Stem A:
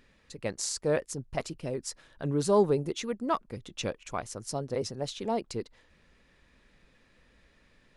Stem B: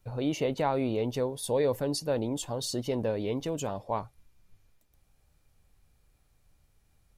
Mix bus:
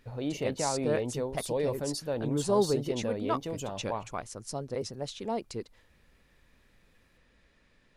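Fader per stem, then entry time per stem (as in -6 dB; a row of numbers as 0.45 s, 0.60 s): -2.5 dB, -3.5 dB; 0.00 s, 0.00 s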